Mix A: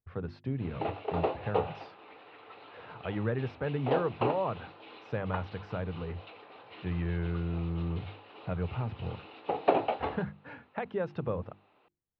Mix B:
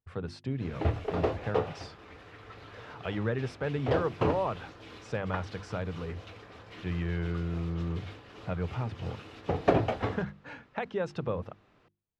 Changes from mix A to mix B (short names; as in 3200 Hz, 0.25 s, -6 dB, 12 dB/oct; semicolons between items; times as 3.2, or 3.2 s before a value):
background: remove speaker cabinet 340–4900 Hz, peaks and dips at 840 Hz +7 dB, 1700 Hz -5 dB, 2700 Hz +7 dB, 4000 Hz +8 dB; master: remove air absorption 310 m